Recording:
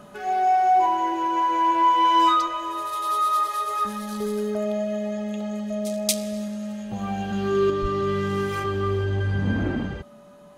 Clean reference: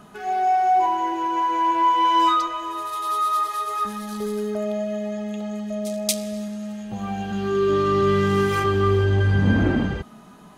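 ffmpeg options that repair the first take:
-filter_complex "[0:a]bandreject=f=580:w=30,asplit=3[a][b][c];[a]afade=t=out:st=7.81:d=0.02[d];[b]highpass=f=140:w=0.5412,highpass=f=140:w=1.3066,afade=t=in:st=7.81:d=0.02,afade=t=out:st=7.93:d=0.02[e];[c]afade=t=in:st=7.93:d=0.02[f];[d][e][f]amix=inputs=3:normalize=0,asetnsamples=n=441:p=0,asendcmd='7.7 volume volume 5.5dB',volume=0dB"

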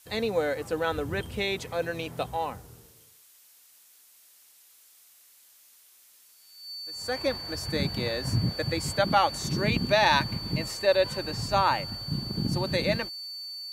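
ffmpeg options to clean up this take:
-af "bandreject=f=4.5k:w=30,afftdn=nr=15:nf=-57"

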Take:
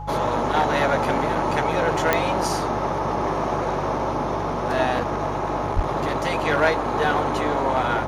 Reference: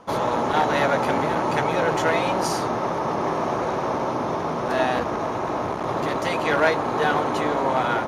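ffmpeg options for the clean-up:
-filter_complex "[0:a]adeclick=t=4,bandreject=f=49.1:t=h:w=4,bandreject=f=98.2:t=h:w=4,bandreject=f=147.3:t=h:w=4,bandreject=f=840:w=30,asplit=3[a][b][c];[a]afade=t=out:st=5.75:d=0.02[d];[b]highpass=f=140:w=0.5412,highpass=f=140:w=1.3066,afade=t=in:st=5.75:d=0.02,afade=t=out:st=5.87:d=0.02[e];[c]afade=t=in:st=5.87:d=0.02[f];[d][e][f]amix=inputs=3:normalize=0"

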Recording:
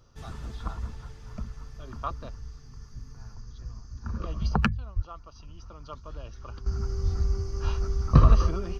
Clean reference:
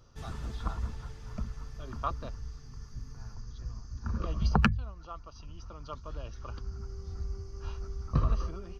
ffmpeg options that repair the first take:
-filter_complex "[0:a]asplit=3[a][b][c];[a]afade=t=out:st=4.95:d=0.02[d];[b]highpass=f=140:w=0.5412,highpass=f=140:w=1.3066,afade=t=in:st=4.95:d=0.02,afade=t=out:st=5.07:d=0.02[e];[c]afade=t=in:st=5.07:d=0.02[f];[d][e][f]amix=inputs=3:normalize=0,asplit=3[g][h][i];[g]afade=t=out:st=7.02:d=0.02[j];[h]highpass=f=140:w=0.5412,highpass=f=140:w=1.3066,afade=t=in:st=7.02:d=0.02,afade=t=out:st=7.14:d=0.02[k];[i]afade=t=in:st=7.14:d=0.02[l];[j][k][l]amix=inputs=3:normalize=0,asplit=3[m][n][o];[m]afade=t=out:st=8.4:d=0.02[p];[n]highpass=f=140:w=0.5412,highpass=f=140:w=1.3066,afade=t=in:st=8.4:d=0.02,afade=t=out:st=8.52:d=0.02[q];[o]afade=t=in:st=8.52:d=0.02[r];[p][q][r]amix=inputs=3:normalize=0,asetnsamples=n=441:p=0,asendcmd='6.66 volume volume -10.5dB',volume=0dB"

